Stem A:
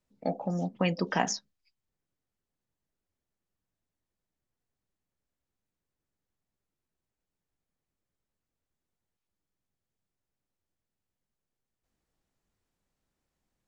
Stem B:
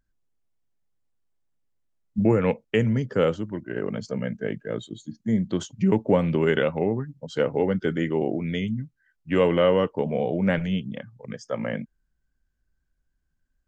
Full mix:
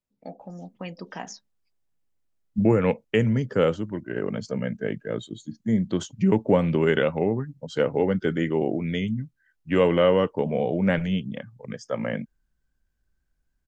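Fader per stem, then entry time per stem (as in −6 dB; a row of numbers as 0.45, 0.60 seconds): −8.5, +0.5 decibels; 0.00, 0.40 seconds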